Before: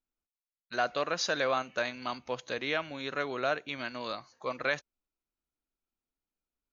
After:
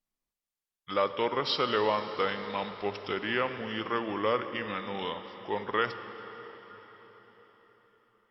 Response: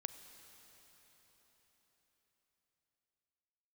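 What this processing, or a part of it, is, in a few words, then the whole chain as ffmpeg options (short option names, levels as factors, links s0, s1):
slowed and reverbed: -filter_complex "[0:a]asetrate=35721,aresample=44100[s0];[1:a]atrim=start_sample=2205[s1];[s0][s1]afir=irnorm=-1:irlink=0,volume=1.78"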